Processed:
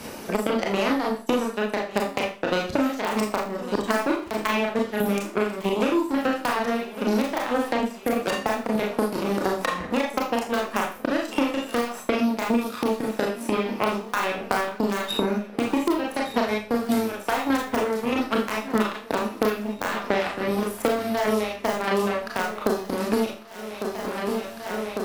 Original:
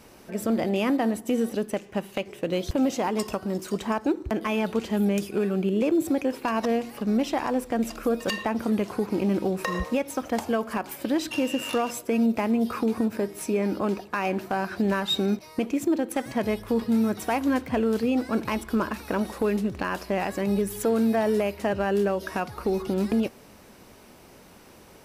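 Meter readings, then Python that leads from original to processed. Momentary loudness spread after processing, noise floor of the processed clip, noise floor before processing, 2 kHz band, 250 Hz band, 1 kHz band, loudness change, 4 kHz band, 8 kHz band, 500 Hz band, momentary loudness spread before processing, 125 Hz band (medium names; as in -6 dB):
4 LU, -39 dBFS, -51 dBFS, +5.5 dB, -1.0 dB, +4.5 dB, +1.0 dB, +3.0 dB, +1.5 dB, +1.5 dB, 5 LU, -2.5 dB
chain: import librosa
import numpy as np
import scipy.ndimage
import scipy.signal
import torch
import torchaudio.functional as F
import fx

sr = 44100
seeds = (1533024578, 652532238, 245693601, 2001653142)

p1 = fx.dereverb_blind(x, sr, rt60_s=0.66)
p2 = fx.dynamic_eq(p1, sr, hz=1300.0, q=2.0, threshold_db=-40.0, ratio=4.0, max_db=3)
p3 = fx.cheby_harmonics(p2, sr, harmonics=(3,), levels_db=(-10,), full_scale_db=-14.0)
p4 = fx.low_shelf(p3, sr, hz=94.0, db=-6.5)
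p5 = (np.mod(10.0 ** (17.5 / 20.0) * p4 + 1.0, 2.0) - 1.0) / 10.0 ** (17.5 / 20.0)
p6 = p4 + (p5 * librosa.db_to_amplitude(-6.0))
p7 = fx.tremolo_shape(p6, sr, shape='saw_down', hz=1.6, depth_pct=65)
p8 = p7 + fx.echo_feedback(p7, sr, ms=1151, feedback_pct=59, wet_db=-22.0, dry=0)
p9 = fx.rev_schroeder(p8, sr, rt60_s=0.33, comb_ms=26, drr_db=-2.0)
p10 = fx.band_squash(p9, sr, depth_pct=100)
y = p10 * librosa.db_to_amplitude(5.0)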